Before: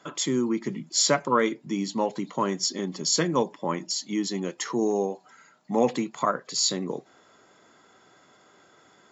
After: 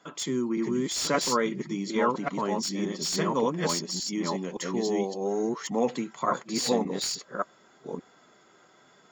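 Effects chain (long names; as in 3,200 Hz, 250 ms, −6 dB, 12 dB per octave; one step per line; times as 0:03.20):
delay that plays each chunk backwards 571 ms, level 0 dB
flanger 0.87 Hz, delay 4.1 ms, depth 1.6 ms, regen −54%
slew-rate limiting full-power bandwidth 240 Hz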